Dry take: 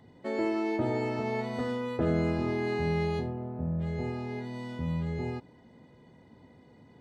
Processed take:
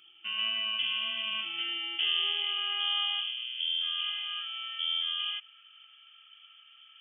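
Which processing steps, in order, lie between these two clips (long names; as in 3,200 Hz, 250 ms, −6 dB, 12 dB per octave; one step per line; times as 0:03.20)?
voice inversion scrambler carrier 3,300 Hz
high-pass filter sweep 100 Hz → 1,400 Hz, 0:01.00–0:03.60
level −2.5 dB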